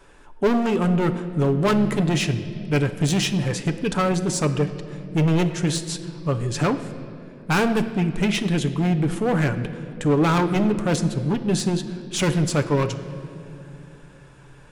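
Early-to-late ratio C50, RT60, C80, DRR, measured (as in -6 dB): 11.5 dB, 2.7 s, 12.5 dB, 7.0 dB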